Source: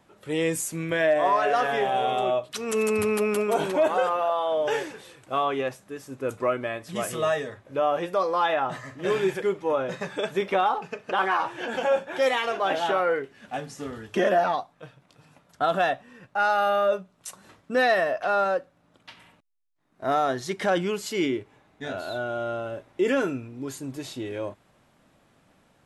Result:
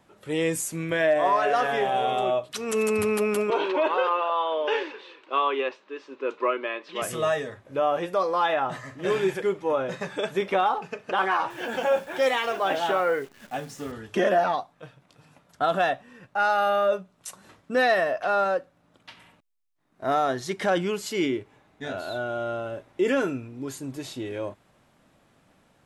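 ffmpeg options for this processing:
-filter_complex "[0:a]asettb=1/sr,asplit=3[a][b][c];[a]atrim=end=3.504[d];[b]atrim=start=3.5:end=7.02,asetpts=PTS-STARTPTS,afade=t=in:d=0.004:c=qsin,afade=t=out:st=3.516:d=0.004:c=qsin,highpass=f=310:w=0.5412,highpass=f=310:w=1.3066,equalizer=f=370:t=q:w=4:g=4,equalizer=f=710:t=q:w=4:g=-8,equalizer=f=1k:t=q:w=4:g=7,equalizer=f=2.7k:t=q:w=4:g=6,equalizer=f=4k:t=q:w=4:g=3,lowpass=f=4.5k:w=0.5412,lowpass=f=4.5k:w=1.3066[e];[c]atrim=start=7.016[f];[d][e]acrossfade=d=0.004:c1=hsin:c2=qsin[g];[g][f]acrossfade=d=0.004:c1=qsin:c2=hsin,asettb=1/sr,asplit=3[h][i][j];[h]atrim=end=11.504[k];[i]atrim=start=11.5:end=13.92,asetpts=PTS-STARTPTS,afade=t=in:d=0.004:c=qsin,afade=t=out:st=2.416:d=0.004:c=qsin,acrusher=bits=9:dc=4:mix=0:aa=0.000001[l];[j]atrim=start=13.916[m];[k][l]acrossfade=d=0.004:c1=hsin:c2=qsin[n];[n][m]acrossfade=d=0.004:c1=qsin:c2=hsin"

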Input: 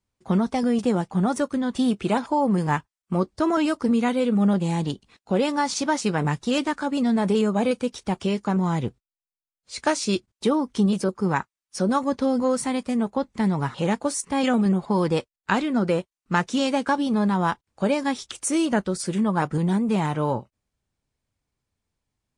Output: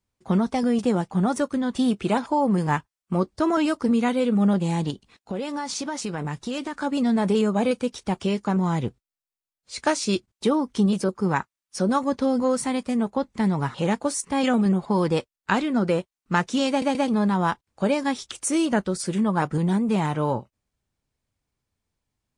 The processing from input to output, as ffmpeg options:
-filter_complex "[0:a]asettb=1/sr,asplit=3[a][b][c];[a]atrim=end=4.904[d];[b]atrim=start=4.9:end=6.78,asetpts=PTS-STARTPTS,afade=t=in:d=0.004:c=qsin,afade=t=out:st=1.876:d=0.004:c=qsin,acompressor=threshold=-26dB:ratio=4:attack=3.2:release=140:knee=1:detection=peak[e];[c]atrim=start=6.776[f];[d][e]acrossfade=d=0.004:c1=hsin:c2=qsin[g];[g][f]acrossfade=d=0.004:c1=qsin:c2=hsin,asplit=4[h][i][j][k];[h]atrim=end=16.822[l];[i]atrim=start=16.688:end=16.822[m];[j]atrim=start=16.688:end=16.822[n];[k]atrim=start=17.078[o];[l][m]acrossfade=d=0.004:c1=hsin:c2=hsin[p];[p][n]acrossfade=d=0.004:c1=hsin:c2=hsin[q];[q][o]acrossfade=d=0.004:c1=hsin:c2=hsin"

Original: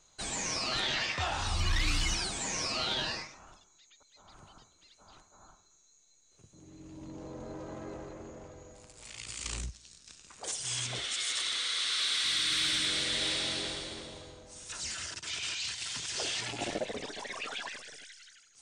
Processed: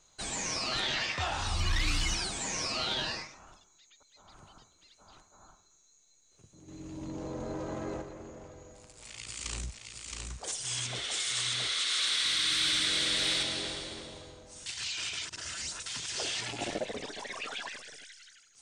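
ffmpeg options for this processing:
-filter_complex "[0:a]asettb=1/sr,asplit=3[a][b][c];[a]atrim=end=6.684[d];[b]atrim=start=6.68:end=8.02,asetpts=PTS-STARTPTS,afade=t=in:d=0.004:c=qsin,afade=t=out:st=1.336:d=0.004:c=qsin,acontrast=36[e];[c]atrim=start=8.016[f];[d][e]acrossfade=d=0.004:c1=hsin:c2=qsin[g];[g][f]acrossfade=d=0.004:c1=qsin:c2=hsin,asettb=1/sr,asplit=3[h][i][j];[h]atrim=end=8.884[k];[i]atrim=start=8.88:end=13.43,asetpts=PTS-STARTPTS,afade=t=in:d=0.004:c=qsin,afade=t=out:st=4.546:d=0.004:c=qsin,aecho=1:1:670:0.668,atrim=end_sample=200655[l];[j]atrim=start=13.426[m];[k][l]acrossfade=d=0.004:c1=hsin:c2=qsin[n];[n][m]acrossfade=d=0.004:c1=qsin:c2=hsin,asplit=3[o][p][q];[o]atrim=end=14.662[r];[p]atrim=start=14.658:end=15.862,asetpts=PTS-STARTPTS,areverse[s];[q]atrim=start=15.858[t];[r][s]acrossfade=d=0.004:c1=hsin:c2=hsin[u];[u][t]acrossfade=d=0.004:c1=hsin:c2=hsin"

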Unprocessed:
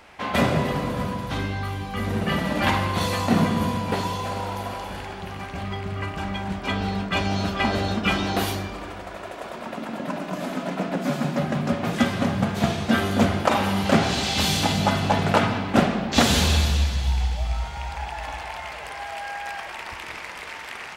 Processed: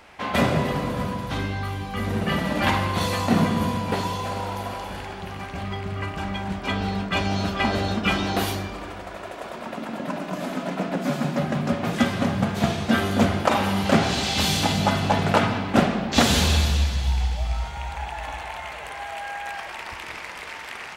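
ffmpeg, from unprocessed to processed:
-filter_complex "[0:a]asettb=1/sr,asplit=3[a][b][c];[a]atrim=end=17.714[d];[b]atrim=start=17.71:end=19.54,asetpts=PTS-STARTPTS,afade=t=in:d=0.004:c=qsin,afade=t=out:st=1.826:d=0.004:c=qsin,equalizer=f=5k:t=o:w=0.25:g=-7[e];[c]atrim=start=19.536[f];[d][e]acrossfade=d=0.004:c1=hsin:c2=qsin[g];[g][f]acrossfade=d=0.004:c1=qsin:c2=hsin"

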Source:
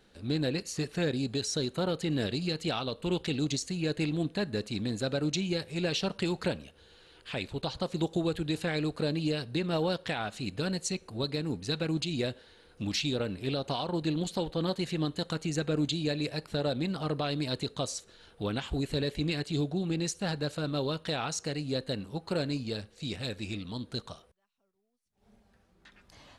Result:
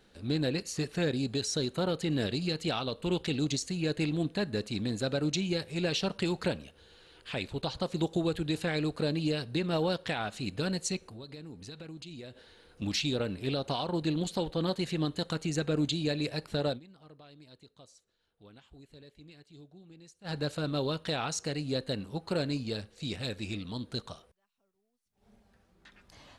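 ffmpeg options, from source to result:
-filter_complex "[0:a]asettb=1/sr,asplit=3[a][b][c];[a]atrim=end=10.974[d];[b]atrim=start=10.97:end=12.82,asetpts=PTS-STARTPTS,afade=t=in:d=0.004:c=qsin,afade=t=out:st=1.846:d=0.004:c=qsin,acompressor=threshold=-44dB:ratio=4:attack=3.2:release=140:knee=1:detection=peak[e];[c]atrim=start=12.816[f];[d][e]acrossfade=d=0.004:c1=hsin:c2=qsin[g];[g][f]acrossfade=d=0.004:c1=qsin:c2=hsin,asplit=3[h][i][j];[h]atrim=end=16.8,asetpts=PTS-STARTPTS,afade=t=out:st=16.66:d=0.14:c=qsin:silence=0.0749894[k];[i]atrim=start=16.8:end=20.24,asetpts=PTS-STARTPTS,volume=-22.5dB[l];[j]atrim=start=20.24,asetpts=PTS-STARTPTS,afade=t=in:d=0.14:c=qsin:silence=0.0749894[m];[k][l][m]concat=n=3:v=0:a=1"

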